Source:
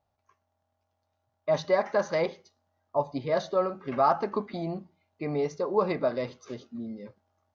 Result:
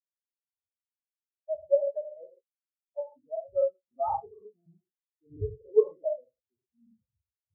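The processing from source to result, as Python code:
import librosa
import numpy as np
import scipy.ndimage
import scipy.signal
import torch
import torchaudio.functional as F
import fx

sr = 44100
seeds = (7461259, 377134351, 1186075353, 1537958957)

p1 = fx.spec_trails(x, sr, decay_s=0.44)
p2 = fx.dmg_wind(p1, sr, seeds[0], corner_hz=100.0, level_db=-36.0)
p3 = fx.rider(p2, sr, range_db=3, speed_s=2.0)
p4 = p2 + (p3 * librosa.db_to_amplitude(2.0))
p5 = scipy.signal.sosfilt(scipy.signal.butter(2, 65.0, 'highpass', fs=sr, output='sos'), p4)
p6 = fx.air_absorb(p5, sr, metres=180.0)
p7 = p6 + fx.echo_single(p6, sr, ms=85, db=-4.0, dry=0)
p8 = fx.buffer_crackle(p7, sr, first_s=0.82, period_s=0.25, block=2048, kind='repeat')
p9 = fx.spectral_expand(p8, sr, expansion=4.0)
y = p9 * librosa.db_to_amplitude(-8.0)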